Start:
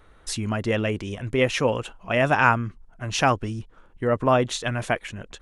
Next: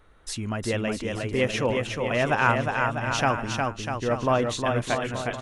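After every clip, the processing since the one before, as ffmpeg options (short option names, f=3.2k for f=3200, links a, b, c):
-af "aecho=1:1:360|648|878.4|1063|1210:0.631|0.398|0.251|0.158|0.1,volume=-3.5dB"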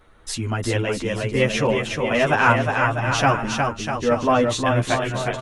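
-filter_complex "[0:a]asplit=2[a][b];[b]adelay=10.4,afreqshift=0.53[c];[a][c]amix=inputs=2:normalize=1,volume=8dB"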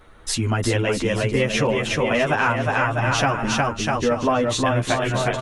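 -af "acompressor=threshold=-21dB:ratio=6,volume=4.5dB"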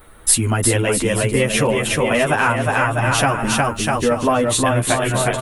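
-af "aexciter=amount=7.6:drive=4.6:freq=8.4k,volume=3dB"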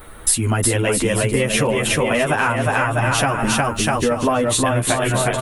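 -af "acompressor=threshold=-23dB:ratio=3,volume=6dB"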